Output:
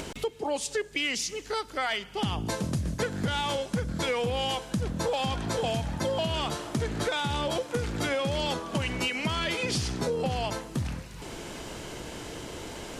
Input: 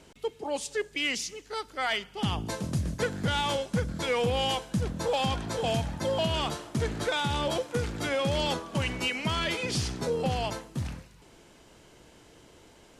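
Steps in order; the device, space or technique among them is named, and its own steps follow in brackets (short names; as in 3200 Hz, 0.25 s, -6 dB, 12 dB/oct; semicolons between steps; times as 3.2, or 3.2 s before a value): upward and downward compression (upward compressor, threshold -32 dBFS; compressor, threshold -30 dBFS, peak gain reduction 7 dB); gain +4.5 dB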